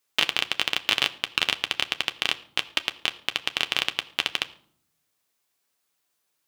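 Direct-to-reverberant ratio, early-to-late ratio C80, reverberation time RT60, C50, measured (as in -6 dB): 9.0 dB, 20.0 dB, 0.60 s, 18.5 dB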